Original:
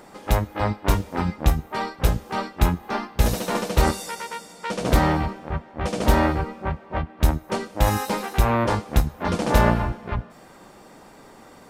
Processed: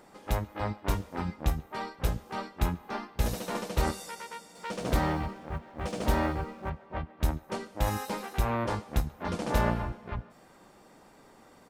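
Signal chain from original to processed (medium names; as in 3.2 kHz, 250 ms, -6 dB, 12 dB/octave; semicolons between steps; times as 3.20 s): 4.55–6.70 s: companding laws mixed up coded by mu; speakerphone echo 140 ms, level -23 dB; trim -9 dB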